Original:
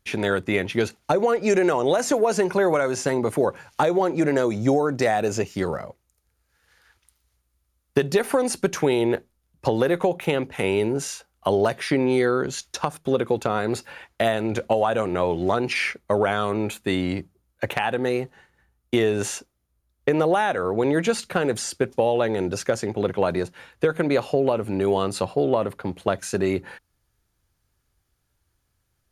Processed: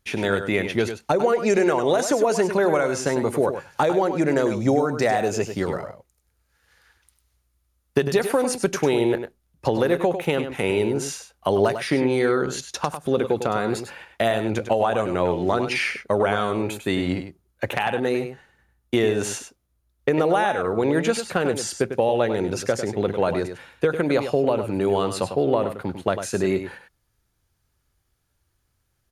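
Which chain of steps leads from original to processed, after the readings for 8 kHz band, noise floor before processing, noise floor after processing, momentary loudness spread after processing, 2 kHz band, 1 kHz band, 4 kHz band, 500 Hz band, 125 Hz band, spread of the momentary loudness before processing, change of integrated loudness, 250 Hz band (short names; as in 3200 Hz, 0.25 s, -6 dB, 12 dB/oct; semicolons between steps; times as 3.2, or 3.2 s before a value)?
+0.5 dB, -73 dBFS, -71 dBFS, 8 LU, +0.5 dB, +0.5 dB, +0.5 dB, +0.5 dB, +0.5 dB, 8 LU, +0.5 dB, +0.5 dB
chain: echo 0.1 s -9 dB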